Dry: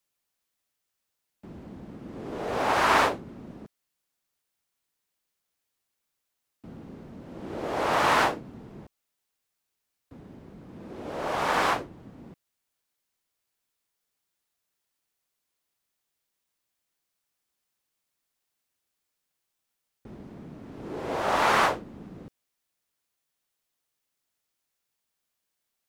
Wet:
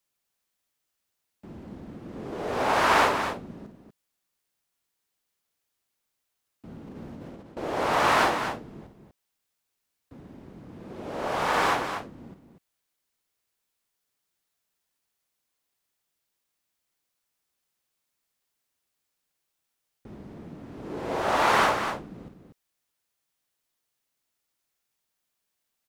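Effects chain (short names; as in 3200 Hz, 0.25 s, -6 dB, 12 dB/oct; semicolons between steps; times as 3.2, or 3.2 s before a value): 6.87–7.57 negative-ratio compressor -44 dBFS, ratio -0.5; loudspeakers at several distances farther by 18 m -9 dB, 83 m -8 dB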